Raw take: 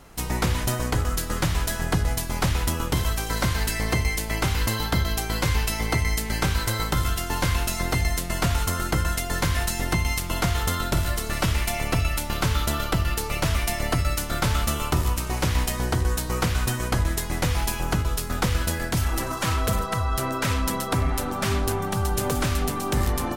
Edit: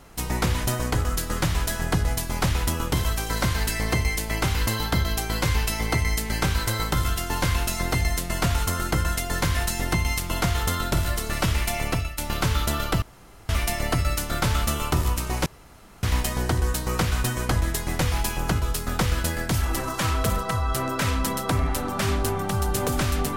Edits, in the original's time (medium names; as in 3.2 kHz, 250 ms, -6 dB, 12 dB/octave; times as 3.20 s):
11.88–12.18 s: fade out, to -15.5 dB
13.02–13.49 s: room tone
15.46 s: insert room tone 0.57 s